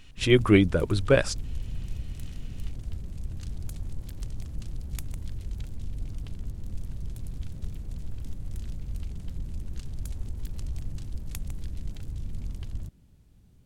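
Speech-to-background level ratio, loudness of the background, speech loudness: 16.5 dB, -39.0 LUFS, -22.5 LUFS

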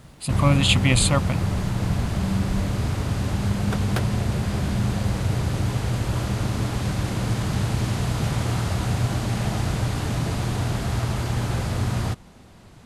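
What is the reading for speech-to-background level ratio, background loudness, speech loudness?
3.5 dB, -25.0 LUFS, -21.5 LUFS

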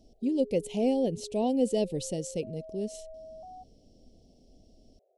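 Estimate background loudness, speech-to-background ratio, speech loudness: -47.0 LUFS, 17.0 dB, -30.0 LUFS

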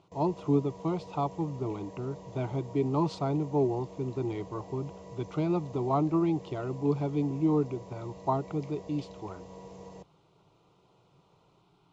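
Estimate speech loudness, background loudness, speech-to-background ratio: -31.5 LUFS, -47.5 LUFS, 16.0 dB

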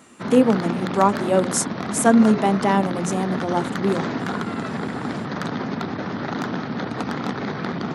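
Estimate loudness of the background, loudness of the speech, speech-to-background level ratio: -27.5 LUFS, -20.5 LUFS, 7.0 dB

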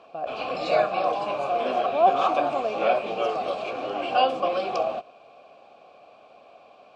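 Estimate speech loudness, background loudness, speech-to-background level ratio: -29.0 LUFS, -25.5 LUFS, -3.5 dB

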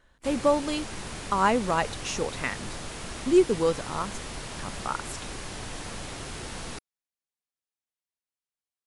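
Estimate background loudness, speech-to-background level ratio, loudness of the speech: -37.5 LUFS, 10.5 dB, -27.0 LUFS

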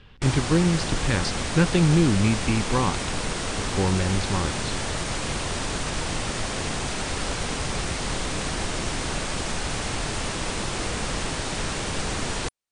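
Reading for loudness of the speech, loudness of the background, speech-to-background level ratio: -24.0 LUFS, -28.0 LUFS, 4.0 dB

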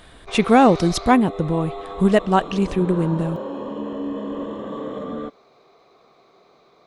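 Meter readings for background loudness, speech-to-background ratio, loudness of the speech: -31.5 LUFS, 12.5 dB, -19.0 LUFS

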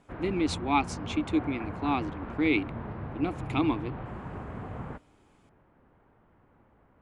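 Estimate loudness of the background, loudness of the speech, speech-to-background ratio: -39.0 LUFS, -30.0 LUFS, 9.0 dB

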